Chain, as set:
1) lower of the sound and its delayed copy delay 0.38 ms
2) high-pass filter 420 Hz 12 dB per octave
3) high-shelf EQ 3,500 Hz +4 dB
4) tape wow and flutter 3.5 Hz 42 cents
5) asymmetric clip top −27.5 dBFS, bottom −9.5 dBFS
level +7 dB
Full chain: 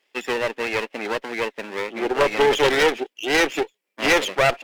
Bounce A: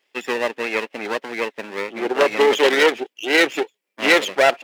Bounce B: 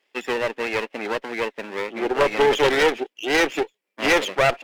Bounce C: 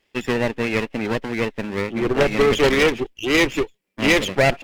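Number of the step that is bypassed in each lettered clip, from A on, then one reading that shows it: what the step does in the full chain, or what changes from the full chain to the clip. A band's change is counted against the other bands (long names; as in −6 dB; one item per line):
5, distortion level −9 dB
3, 8 kHz band −2.0 dB
2, 125 Hz band +10.5 dB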